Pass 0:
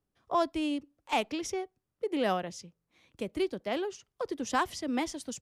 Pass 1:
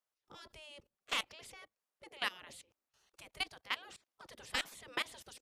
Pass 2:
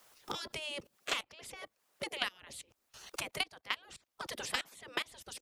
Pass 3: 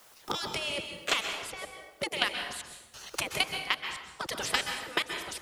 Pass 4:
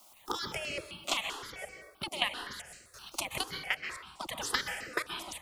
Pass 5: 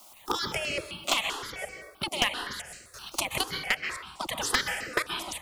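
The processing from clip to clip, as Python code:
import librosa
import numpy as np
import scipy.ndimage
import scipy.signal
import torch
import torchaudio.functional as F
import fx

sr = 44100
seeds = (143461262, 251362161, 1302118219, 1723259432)

y1 = fx.spec_gate(x, sr, threshold_db=-15, keep='weak')
y1 = fx.level_steps(y1, sr, step_db=20)
y1 = F.gain(torch.from_numpy(y1), 6.5).numpy()
y2 = fx.transient(y1, sr, attack_db=3, sustain_db=-1)
y2 = fx.hpss(y2, sr, part='percussive', gain_db=7)
y2 = fx.band_squash(y2, sr, depth_pct=100)
y2 = F.gain(torch.from_numpy(y2), -6.0).numpy()
y3 = fx.rev_plate(y2, sr, seeds[0], rt60_s=1.0, hf_ratio=0.7, predelay_ms=115, drr_db=5.0)
y3 = F.gain(torch.from_numpy(y3), 6.5).numpy()
y4 = fx.phaser_held(y3, sr, hz=7.7, low_hz=460.0, high_hz=3500.0)
y5 = np.minimum(y4, 2.0 * 10.0 ** (-22.0 / 20.0) - y4)
y5 = F.gain(torch.from_numpy(y5), 6.0).numpy()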